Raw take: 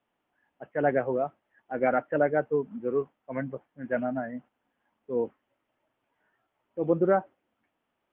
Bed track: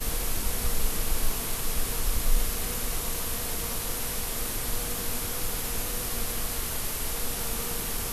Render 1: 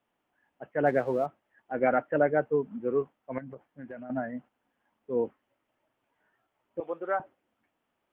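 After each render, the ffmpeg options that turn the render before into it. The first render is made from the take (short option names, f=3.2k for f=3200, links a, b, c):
-filter_complex "[0:a]asettb=1/sr,asplit=3[a][b][c];[a]atrim=end=0.864[d];[b]atrim=start=0.86:end=1.26,asetpts=PTS-STARTPTS,afade=t=in:d=0.004:c=qsin,afade=t=out:st=0.396:d=0.004:c=qsin,aeval=exprs='sgn(val(0))*max(abs(val(0))-0.00211,0)':c=same[e];[c]atrim=start=1.256[f];[d][e]acrossfade=d=0.004:c1=hsin:c2=qsin[g];[g][f]acrossfade=d=0.004:c1=qsin:c2=hsin,asettb=1/sr,asplit=3[h][i][j];[h]atrim=end=3.384[k];[i]atrim=start=3.38:end=4.1,asetpts=PTS-STARTPTS,afade=t=in:d=0.004:c=qsin,afade=t=out:st=0.716:d=0.004:c=qsin,acompressor=threshold=-38dB:ratio=10:attack=3.2:release=140:knee=1:detection=peak[l];[j]atrim=start=4.096[m];[k][l]acrossfade=d=0.004:c1=hsin:c2=qsin[n];[n][m]acrossfade=d=0.004:c1=qsin:c2=hsin,asettb=1/sr,asplit=3[o][p][q];[o]atrim=end=6.804[r];[p]atrim=start=6.8:end=7.2,asetpts=PTS-STARTPTS,afade=t=in:d=0.004:c=qsin,afade=t=out:st=0.396:d=0.004:c=qsin,highpass=830[s];[q]atrim=start=7.196[t];[r][s]acrossfade=d=0.004:c1=hsin:c2=qsin[u];[u][t]acrossfade=d=0.004:c1=qsin:c2=hsin"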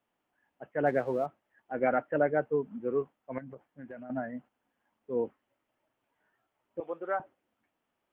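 -af "volume=-2.5dB"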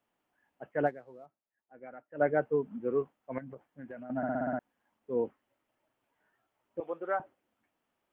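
-filter_complex "[0:a]asplit=10[a][b][c][d][e][f][g][h][i][j];[a]atrim=end=1.15,asetpts=PTS-STARTPTS,afade=t=out:st=0.86:d=0.29:c=exp:silence=0.0944061[k];[b]atrim=start=1.15:end=1.93,asetpts=PTS-STARTPTS,volume=-20.5dB[l];[c]atrim=start=1.93:end=4.232,asetpts=PTS-STARTPTS,afade=t=in:d=0.29:c=exp:silence=0.0944061[m];[d]atrim=start=4.168:end=4.232[n];[e]atrim=start=4.168:end=4.232[o];[f]atrim=start=4.168:end=4.232[p];[g]atrim=start=4.168:end=4.232[q];[h]atrim=start=4.168:end=4.232[r];[i]atrim=start=4.168:end=4.232[s];[j]atrim=start=4.588[t];[k][l][m]concat=n=3:v=0:a=1[u];[u][n]acrossfade=d=0.004:c1=hsin:c2=hsin[v];[v][o]acrossfade=d=0.004:c1=hsin:c2=hsin[w];[w][p]acrossfade=d=0.004:c1=hsin:c2=hsin[x];[x][q]acrossfade=d=0.004:c1=hsin:c2=hsin[y];[y][r]acrossfade=d=0.004:c1=hsin:c2=hsin[z];[z][s]acrossfade=d=0.004:c1=hsin:c2=hsin[aa];[aa][t]acrossfade=d=0.004:c1=hsin:c2=hsin"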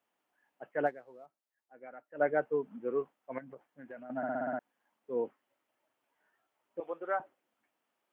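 -af "highpass=f=380:p=1"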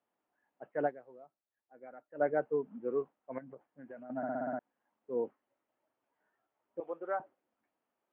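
-af "lowpass=f=1k:p=1"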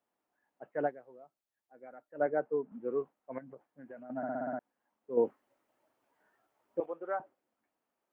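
-filter_complex "[0:a]asettb=1/sr,asplit=3[a][b][c];[a]atrim=end=2.264[d];[b]atrim=start=2.26:end=2.72,asetpts=PTS-STARTPTS,afade=t=in:d=0.004:c=qsin,afade=t=out:st=0.456:d=0.004:c=qsin,highpass=150,lowpass=2.1k[e];[c]atrim=start=2.716[f];[d][e]acrossfade=d=0.004:c1=hsin:c2=qsin[g];[g][f]acrossfade=d=0.004:c1=qsin:c2=hsin,asettb=1/sr,asplit=3[h][i][j];[h]atrim=end=5.174[k];[i]atrim=start=5.17:end=6.86,asetpts=PTS-STARTPTS,afade=t=in:d=0.004:c=qsin,afade=t=out:st=1.686:d=0.004:c=qsin,acontrast=81[l];[j]atrim=start=6.856[m];[k][l]acrossfade=d=0.004:c1=hsin:c2=qsin[n];[n][m]acrossfade=d=0.004:c1=qsin:c2=hsin"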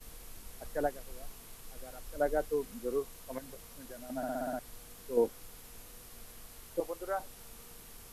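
-filter_complex "[1:a]volume=-20.5dB[a];[0:a][a]amix=inputs=2:normalize=0"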